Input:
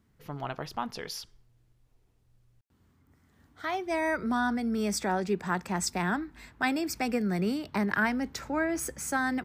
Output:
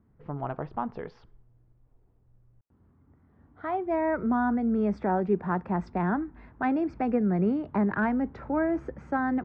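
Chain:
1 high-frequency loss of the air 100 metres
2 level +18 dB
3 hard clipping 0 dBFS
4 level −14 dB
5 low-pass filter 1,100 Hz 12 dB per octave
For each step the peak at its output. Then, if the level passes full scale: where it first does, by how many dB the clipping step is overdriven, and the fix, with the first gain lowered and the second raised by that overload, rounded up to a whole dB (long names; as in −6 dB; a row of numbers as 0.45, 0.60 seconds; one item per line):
−13.0, +5.0, 0.0, −14.0, −14.5 dBFS
step 2, 5.0 dB
step 2 +13 dB, step 4 −9 dB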